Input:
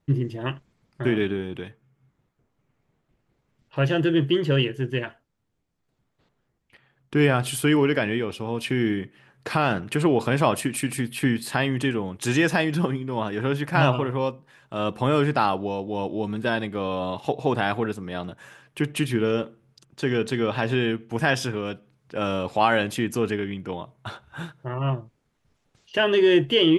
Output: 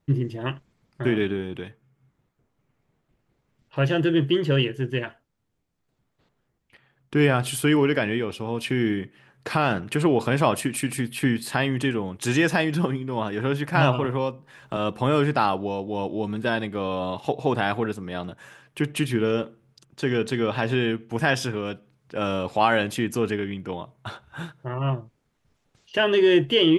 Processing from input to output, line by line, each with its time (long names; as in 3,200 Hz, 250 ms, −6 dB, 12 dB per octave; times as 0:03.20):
0:14.04–0:14.77: multiband upward and downward compressor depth 70%